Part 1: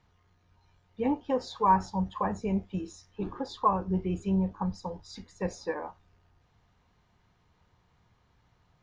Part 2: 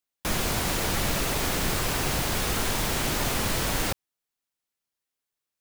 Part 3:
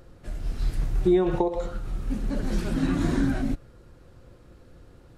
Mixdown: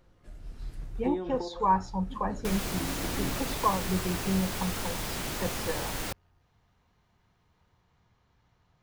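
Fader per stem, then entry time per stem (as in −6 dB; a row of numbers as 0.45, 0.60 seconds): −1.5, −7.5, −13.0 decibels; 0.00, 2.20, 0.00 seconds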